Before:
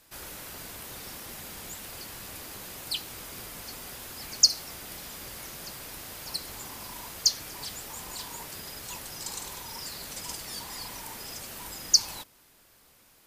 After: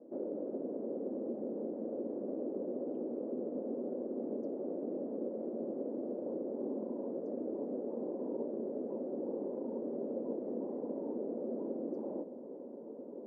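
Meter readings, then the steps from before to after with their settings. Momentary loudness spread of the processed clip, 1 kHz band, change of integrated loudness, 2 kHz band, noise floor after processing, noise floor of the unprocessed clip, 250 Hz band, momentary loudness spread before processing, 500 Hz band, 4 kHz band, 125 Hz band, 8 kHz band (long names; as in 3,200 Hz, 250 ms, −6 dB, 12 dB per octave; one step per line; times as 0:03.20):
1 LU, −9.0 dB, −7.5 dB, below −30 dB, −47 dBFS, −60 dBFS, +13.0 dB, 17 LU, +13.5 dB, below −40 dB, −7.0 dB, below −40 dB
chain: elliptic band-pass filter 230–560 Hz, stop band 80 dB
downward compressor 2 to 1, threshold −56 dBFS, peak gain reduction 5 dB
feedback delay with all-pass diffusion 1,837 ms, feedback 54%, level −10.5 dB
level +18 dB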